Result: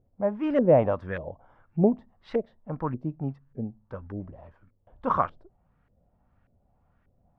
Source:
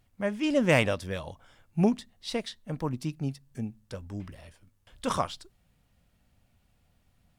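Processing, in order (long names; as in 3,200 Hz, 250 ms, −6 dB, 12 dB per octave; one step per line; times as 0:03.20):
auto-filter low-pass saw up 1.7 Hz 460–1,700 Hz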